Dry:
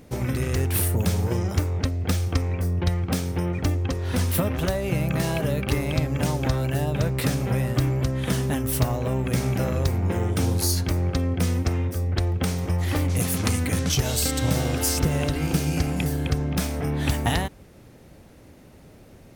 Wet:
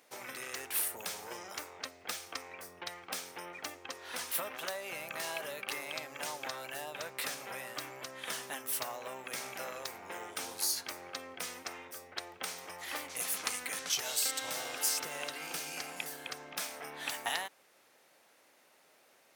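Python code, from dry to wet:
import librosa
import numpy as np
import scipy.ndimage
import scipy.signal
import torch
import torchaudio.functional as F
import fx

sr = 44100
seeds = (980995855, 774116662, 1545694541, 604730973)

y = scipy.signal.sosfilt(scipy.signal.butter(2, 860.0, 'highpass', fs=sr, output='sos'), x)
y = F.gain(torch.from_numpy(y), -6.0).numpy()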